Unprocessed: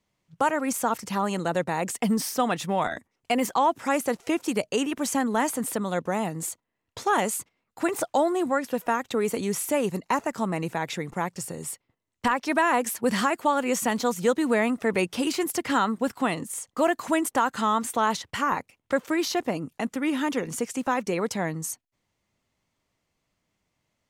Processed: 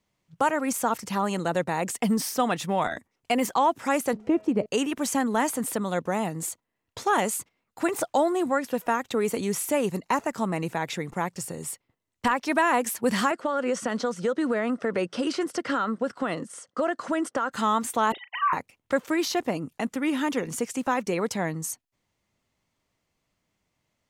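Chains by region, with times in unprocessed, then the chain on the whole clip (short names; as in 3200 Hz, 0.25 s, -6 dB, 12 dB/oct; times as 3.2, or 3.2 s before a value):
4.13–4.66 LPF 1200 Hz 6 dB/oct + tilt shelf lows +5 dB, about 760 Hz + de-hum 213.5 Hz, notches 28
13.31–17.52 speaker cabinet 150–7800 Hz, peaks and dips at 540 Hz +6 dB, 880 Hz -5 dB, 1400 Hz +6 dB, 2400 Hz -6 dB, 3800 Hz -4 dB, 7000 Hz -8 dB + compressor, threshold -21 dBFS
18.12–18.53 sine-wave speech + doubler 37 ms -12 dB
whole clip: dry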